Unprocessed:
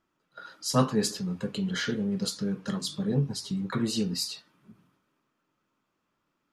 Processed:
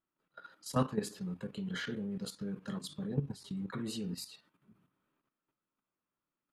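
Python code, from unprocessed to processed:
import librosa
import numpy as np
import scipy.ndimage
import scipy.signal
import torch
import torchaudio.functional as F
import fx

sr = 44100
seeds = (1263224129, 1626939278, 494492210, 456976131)

y = fx.level_steps(x, sr, step_db=11)
y = fx.peak_eq(y, sr, hz=5600.0, db=-9.0, octaves=0.78)
y = y * librosa.db_to_amplitude(-4.5)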